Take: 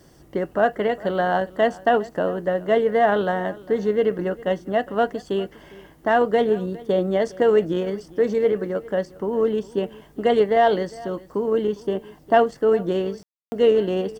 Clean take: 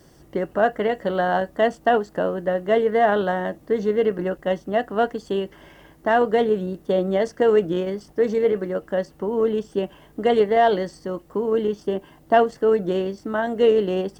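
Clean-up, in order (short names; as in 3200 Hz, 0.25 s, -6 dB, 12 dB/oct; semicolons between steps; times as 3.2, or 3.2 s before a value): room tone fill 13.23–13.52; inverse comb 0.406 s -20.5 dB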